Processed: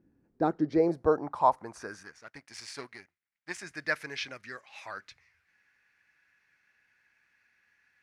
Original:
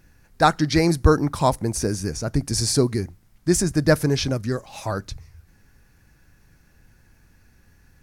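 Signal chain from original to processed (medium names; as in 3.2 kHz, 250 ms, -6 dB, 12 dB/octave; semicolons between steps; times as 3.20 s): 2.03–3.63 s: power-law waveshaper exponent 1.4; band-pass sweep 290 Hz -> 2.1 kHz, 0.26–2.33 s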